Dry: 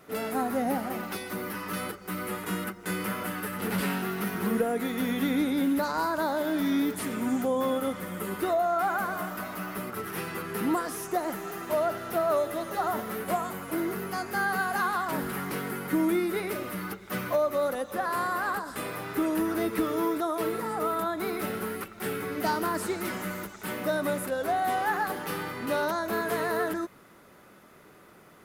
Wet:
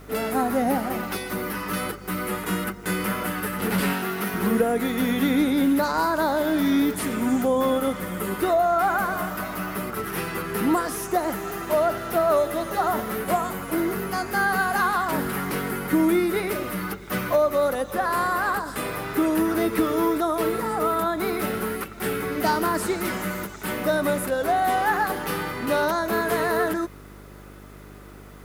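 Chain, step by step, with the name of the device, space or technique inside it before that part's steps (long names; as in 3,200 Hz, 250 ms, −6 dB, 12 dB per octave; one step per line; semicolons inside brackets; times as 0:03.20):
video cassette with head-switching buzz (hum with harmonics 50 Hz, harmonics 9, −51 dBFS −4 dB per octave; white noise bed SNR 38 dB)
0:03.93–0:04.34: low-shelf EQ 160 Hz −10.5 dB
level +5.5 dB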